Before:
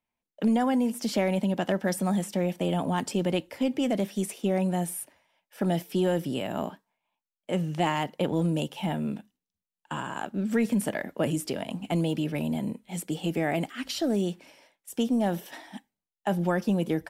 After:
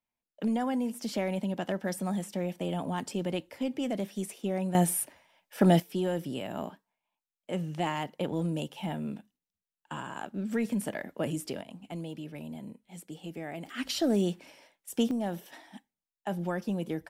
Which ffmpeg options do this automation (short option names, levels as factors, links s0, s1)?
-af "asetnsamples=n=441:p=0,asendcmd='4.75 volume volume 5dB;5.8 volume volume -5dB;11.61 volume volume -12dB;13.66 volume volume 0dB;15.11 volume volume -6.5dB',volume=0.531"